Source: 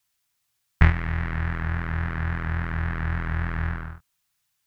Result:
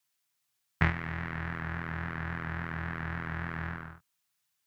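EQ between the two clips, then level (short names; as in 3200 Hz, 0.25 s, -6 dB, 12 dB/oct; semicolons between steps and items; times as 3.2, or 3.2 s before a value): HPF 130 Hz 12 dB/oct; -4.5 dB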